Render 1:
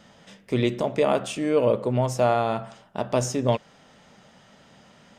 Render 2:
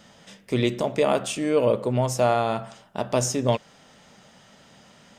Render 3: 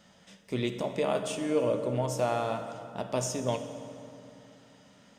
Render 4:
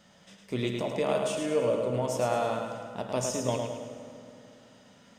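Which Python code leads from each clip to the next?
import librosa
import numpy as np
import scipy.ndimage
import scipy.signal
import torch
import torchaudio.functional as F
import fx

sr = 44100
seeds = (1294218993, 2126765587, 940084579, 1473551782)

y1 = fx.high_shelf(x, sr, hz=4300.0, db=6.5)
y2 = fx.rev_fdn(y1, sr, rt60_s=2.8, lf_ratio=1.3, hf_ratio=0.65, size_ms=32.0, drr_db=7.0)
y2 = y2 * 10.0 ** (-8.0 / 20.0)
y3 = fx.echo_feedback(y2, sr, ms=107, feedback_pct=44, wet_db=-5.5)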